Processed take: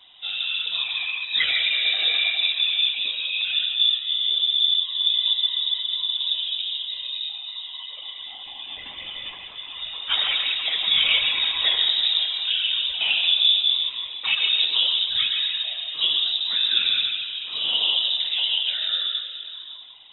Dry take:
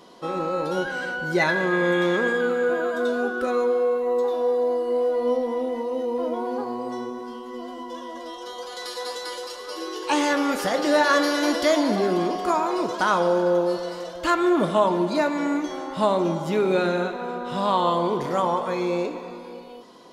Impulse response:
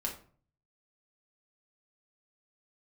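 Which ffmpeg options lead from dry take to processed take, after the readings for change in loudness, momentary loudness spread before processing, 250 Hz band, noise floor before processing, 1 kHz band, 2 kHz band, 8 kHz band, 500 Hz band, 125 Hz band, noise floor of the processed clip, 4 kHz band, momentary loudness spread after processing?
+3.5 dB, 13 LU, below −30 dB, −38 dBFS, −18.5 dB, 0.0 dB, below −40 dB, −29.0 dB, below −20 dB, −39 dBFS, +18.5 dB, 15 LU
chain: -filter_complex "[0:a]asplit=2[link_01][link_02];[1:a]atrim=start_sample=2205,lowpass=3300,adelay=128[link_03];[link_02][link_03]afir=irnorm=-1:irlink=0,volume=-6dB[link_04];[link_01][link_04]amix=inputs=2:normalize=0,afftfilt=real='hypot(re,im)*cos(2*PI*random(0))':imag='hypot(re,im)*sin(2*PI*random(1))':win_size=512:overlap=0.75,lowpass=frequency=3400:width_type=q:width=0.5098,lowpass=frequency=3400:width_type=q:width=0.6013,lowpass=frequency=3400:width_type=q:width=0.9,lowpass=frequency=3400:width_type=q:width=2.563,afreqshift=-4000,volume=4dB"

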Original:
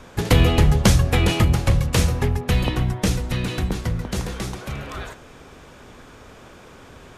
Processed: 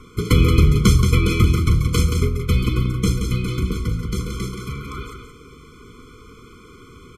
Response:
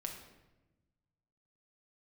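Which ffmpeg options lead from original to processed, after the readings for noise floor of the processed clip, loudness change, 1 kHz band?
−45 dBFS, +1.5 dB, −3.0 dB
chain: -af "aecho=1:1:176:0.473,afftfilt=real='re*eq(mod(floor(b*sr/1024/500),2),0)':imag='im*eq(mod(floor(b*sr/1024/500),2),0)':win_size=1024:overlap=0.75,volume=1dB"

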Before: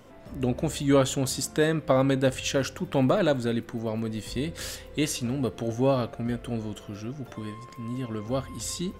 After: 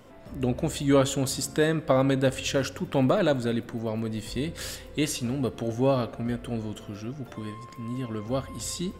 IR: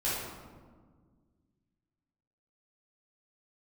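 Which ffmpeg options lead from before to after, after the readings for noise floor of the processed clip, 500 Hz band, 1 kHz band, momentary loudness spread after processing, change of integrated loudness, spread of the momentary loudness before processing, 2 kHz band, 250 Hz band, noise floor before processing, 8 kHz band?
−45 dBFS, 0.0 dB, 0.0 dB, 14 LU, 0.0 dB, 14 LU, 0.0 dB, 0.0 dB, −46 dBFS, −0.5 dB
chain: -filter_complex "[0:a]bandreject=frequency=6100:width=20,asplit=2[link_01][link_02];[1:a]atrim=start_sample=2205,adelay=54[link_03];[link_02][link_03]afir=irnorm=-1:irlink=0,volume=-29dB[link_04];[link_01][link_04]amix=inputs=2:normalize=0"

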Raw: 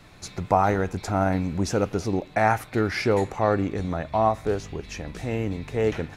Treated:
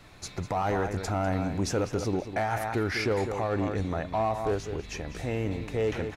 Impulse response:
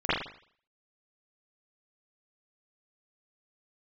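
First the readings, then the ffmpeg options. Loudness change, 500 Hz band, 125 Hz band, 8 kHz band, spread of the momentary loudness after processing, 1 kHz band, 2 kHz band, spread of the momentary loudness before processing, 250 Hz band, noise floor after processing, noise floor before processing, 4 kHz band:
−5.0 dB, −4.5 dB, −3.5 dB, −1.5 dB, 6 LU, −6.0 dB, −4.0 dB, 9 LU, −4.5 dB, −47 dBFS, −48 dBFS, −1.5 dB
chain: -filter_complex "[0:a]equalizer=frequency=190:width=1.8:gain=-3.5,asplit=2[link_01][link_02];[link_02]adelay=198.3,volume=-11dB,highshelf=frequency=4000:gain=-4.46[link_03];[link_01][link_03]amix=inputs=2:normalize=0,asplit=2[link_04][link_05];[link_05]aeval=exprs='0.112*(abs(mod(val(0)/0.112+3,4)-2)-1)':channel_layout=same,volume=-9dB[link_06];[link_04][link_06]amix=inputs=2:normalize=0,alimiter=limit=-16.5dB:level=0:latency=1:release=12,volume=-4dB"

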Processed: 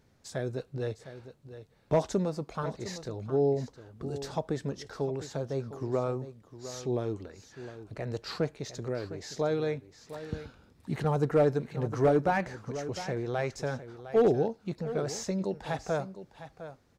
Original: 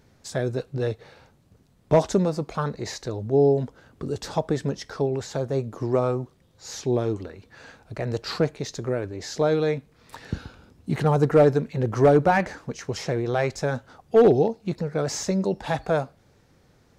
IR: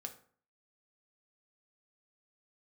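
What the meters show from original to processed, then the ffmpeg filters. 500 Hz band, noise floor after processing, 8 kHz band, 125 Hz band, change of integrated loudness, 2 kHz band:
−7.5 dB, −64 dBFS, −7.5 dB, −7.5 dB, −7.5 dB, −7.5 dB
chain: -af "aecho=1:1:707:0.224,volume=-7.5dB"

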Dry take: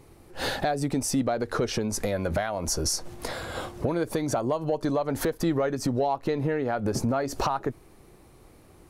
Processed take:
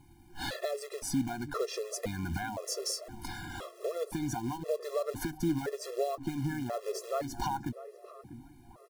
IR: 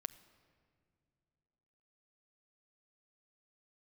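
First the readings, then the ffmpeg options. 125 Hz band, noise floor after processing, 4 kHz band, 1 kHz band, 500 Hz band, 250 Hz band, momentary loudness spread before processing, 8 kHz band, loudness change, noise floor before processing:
−8.0 dB, −56 dBFS, −6.5 dB, −8.0 dB, −7.5 dB, −7.5 dB, 7 LU, −8.0 dB, −7.5 dB, −54 dBFS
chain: -filter_complex "[0:a]acrusher=bits=4:mode=log:mix=0:aa=0.000001,asplit=2[link_01][link_02];[link_02]adelay=645,lowpass=frequency=960:poles=1,volume=-13dB,asplit=2[link_03][link_04];[link_04]adelay=645,lowpass=frequency=960:poles=1,volume=0.5,asplit=2[link_05][link_06];[link_06]adelay=645,lowpass=frequency=960:poles=1,volume=0.5,asplit=2[link_07][link_08];[link_08]adelay=645,lowpass=frequency=960:poles=1,volume=0.5,asplit=2[link_09][link_10];[link_10]adelay=645,lowpass=frequency=960:poles=1,volume=0.5[link_11];[link_01][link_03][link_05][link_07][link_09][link_11]amix=inputs=6:normalize=0,afftfilt=real='re*gt(sin(2*PI*0.97*pts/sr)*(1-2*mod(floor(b*sr/1024/350),2)),0)':imag='im*gt(sin(2*PI*0.97*pts/sr)*(1-2*mod(floor(b*sr/1024/350),2)),0)':win_size=1024:overlap=0.75,volume=-4.5dB"

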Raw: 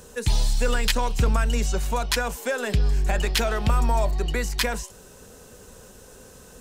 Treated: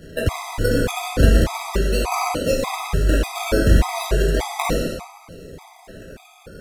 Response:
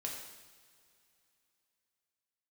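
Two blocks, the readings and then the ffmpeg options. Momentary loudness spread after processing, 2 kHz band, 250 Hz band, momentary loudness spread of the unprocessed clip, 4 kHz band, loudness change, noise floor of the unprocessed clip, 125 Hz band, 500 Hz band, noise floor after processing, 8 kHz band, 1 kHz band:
15 LU, +2.0 dB, +8.0 dB, 4 LU, −0.5 dB, +3.5 dB, −48 dBFS, +4.5 dB, +6.5 dB, −48 dBFS, +0.5 dB, +3.5 dB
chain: -filter_complex "[0:a]acrusher=samples=35:mix=1:aa=0.000001:lfo=1:lforange=21:lforate=0.35[link_01];[1:a]atrim=start_sample=2205,afade=type=out:start_time=0.27:duration=0.01,atrim=end_sample=12348,asetrate=27342,aresample=44100[link_02];[link_01][link_02]afir=irnorm=-1:irlink=0,afftfilt=real='re*gt(sin(2*PI*1.7*pts/sr)*(1-2*mod(floor(b*sr/1024/650),2)),0)':imag='im*gt(sin(2*PI*1.7*pts/sr)*(1-2*mod(floor(b*sr/1024/650),2)),0)':win_size=1024:overlap=0.75,volume=6dB"

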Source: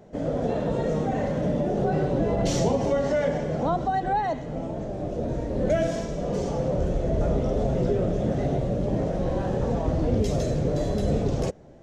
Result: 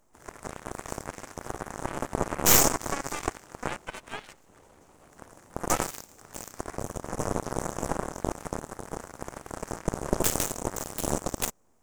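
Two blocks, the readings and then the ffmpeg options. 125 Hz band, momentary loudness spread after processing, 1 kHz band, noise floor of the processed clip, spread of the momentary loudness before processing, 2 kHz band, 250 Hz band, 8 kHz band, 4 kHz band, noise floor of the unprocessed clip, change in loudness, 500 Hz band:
−12.5 dB, 16 LU, −4.0 dB, −59 dBFS, 5 LU, +2.0 dB, −9.5 dB, +13.5 dB, +5.0 dB, −33 dBFS, −4.0 dB, −10.5 dB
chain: -af "aexciter=amount=8.7:drive=9.6:freq=6700,aeval=exprs='abs(val(0))':channel_layout=same,aeval=exprs='0.447*(cos(1*acos(clip(val(0)/0.447,-1,1)))-cos(1*PI/2))+0.0282*(cos(3*acos(clip(val(0)/0.447,-1,1)))-cos(3*PI/2))+0.0447*(cos(7*acos(clip(val(0)/0.447,-1,1)))-cos(7*PI/2))+0.0282*(cos(8*acos(clip(val(0)/0.447,-1,1)))-cos(8*PI/2))':channel_layout=same,volume=5.5dB"

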